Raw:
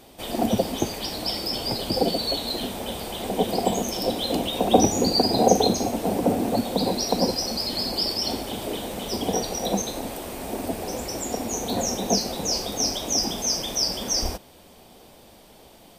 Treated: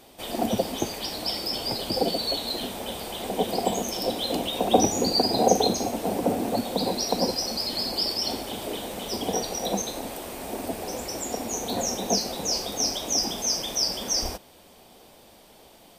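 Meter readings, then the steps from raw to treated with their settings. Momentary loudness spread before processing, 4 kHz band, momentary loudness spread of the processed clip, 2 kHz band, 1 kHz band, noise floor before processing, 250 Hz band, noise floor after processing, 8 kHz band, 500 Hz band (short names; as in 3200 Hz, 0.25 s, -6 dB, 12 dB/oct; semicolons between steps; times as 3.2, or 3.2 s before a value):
10 LU, -1.0 dB, 10 LU, -1.0 dB, -1.5 dB, -50 dBFS, -3.5 dB, -53 dBFS, -1.0 dB, -2.0 dB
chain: low shelf 270 Hz -5 dB; gain -1 dB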